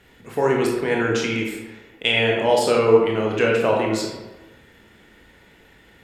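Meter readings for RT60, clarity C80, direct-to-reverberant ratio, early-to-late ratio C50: 1.1 s, 4.5 dB, −1.5 dB, 2.0 dB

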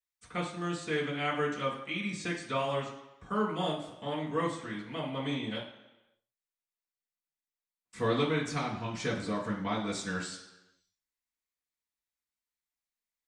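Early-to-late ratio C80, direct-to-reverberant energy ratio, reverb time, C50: 9.5 dB, −8.0 dB, 1.0 s, 6.5 dB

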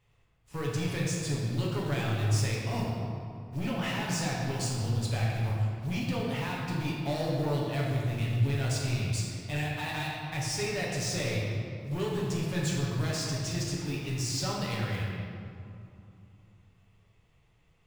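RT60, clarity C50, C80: 2.8 s, −0.5 dB, 1.0 dB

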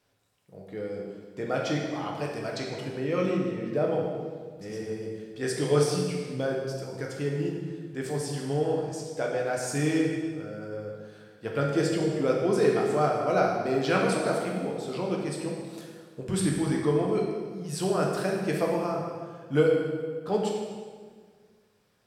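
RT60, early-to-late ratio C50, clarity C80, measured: 1.7 s, 1.5 dB, 3.5 dB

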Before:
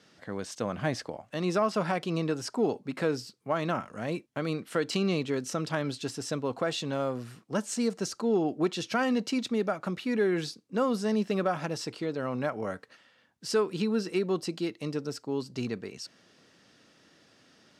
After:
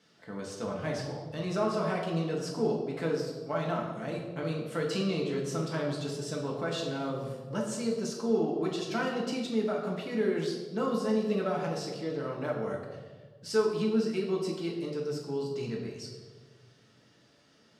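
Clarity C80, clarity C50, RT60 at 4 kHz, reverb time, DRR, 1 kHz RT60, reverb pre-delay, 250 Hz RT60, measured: 6.0 dB, 4.0 dB, 1.0 s, 1.4 s, −2.5 dB, 1.2 s, 4 ms, 2.0 s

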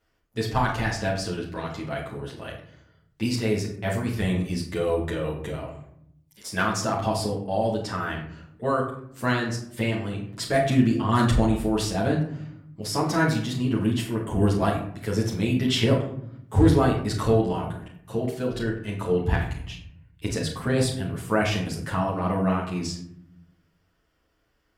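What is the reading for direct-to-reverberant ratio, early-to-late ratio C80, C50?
−4.5 dB, 9.5 dB, 6.0 dB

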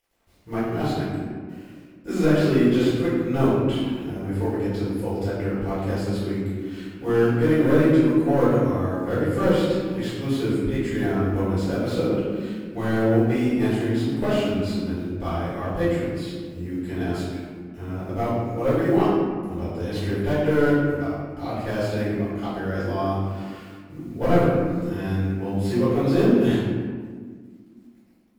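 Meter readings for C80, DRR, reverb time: 1.0 dB, −12.0 dB, 1.7 s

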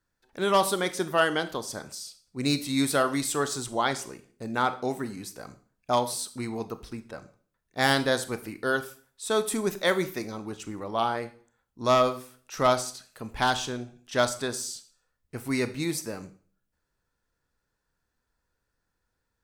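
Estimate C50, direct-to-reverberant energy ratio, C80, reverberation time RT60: 15.0 dB, 11.0 dB, 19.0 dB, 0.45 s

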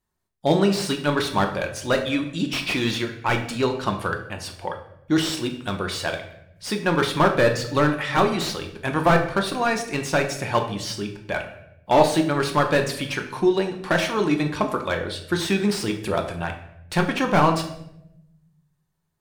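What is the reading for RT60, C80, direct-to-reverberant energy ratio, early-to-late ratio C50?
0.80 s, 12.0 dB, 3.5 dB, 9.0 dB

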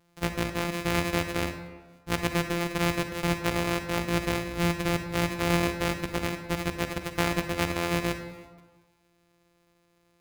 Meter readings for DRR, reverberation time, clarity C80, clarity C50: 7.5 dB, 1.4 s, 10.0 dB, 8.0 dB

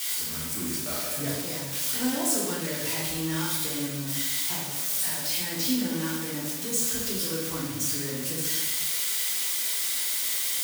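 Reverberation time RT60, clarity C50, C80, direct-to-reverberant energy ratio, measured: 1.1 s, 0.5 dB, 3.5 dB, −7.5 dB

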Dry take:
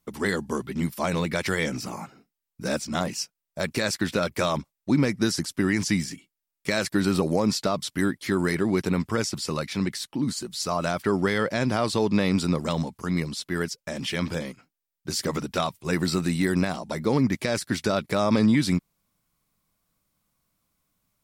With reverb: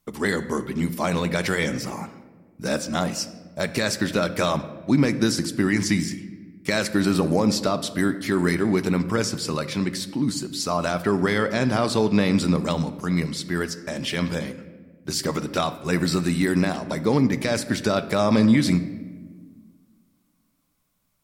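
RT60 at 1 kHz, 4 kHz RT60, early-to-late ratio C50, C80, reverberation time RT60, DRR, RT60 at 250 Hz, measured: 1.2 s, 0.85 s, 13.5 dB, 14.5 dB, 1.5 s, 11.0 dB, 2.2 s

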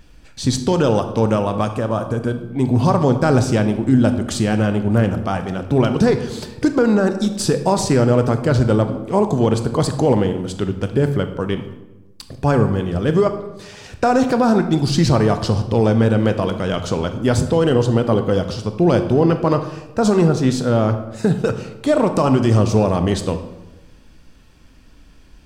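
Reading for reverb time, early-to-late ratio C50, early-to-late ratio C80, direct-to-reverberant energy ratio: 1.1 s, 10.0 dB, 12.5 dB, 7.5 dB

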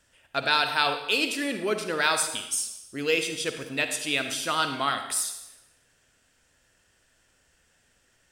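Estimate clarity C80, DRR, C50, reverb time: 9.5 dB, 7.0 dB, 7.5 dB, 0.90 s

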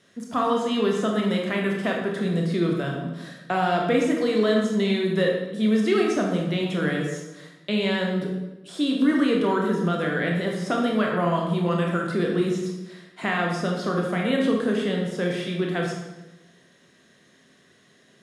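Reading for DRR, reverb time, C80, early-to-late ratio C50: −0.5 dB, 1.1 s, 5.0 dB, 2.5 dB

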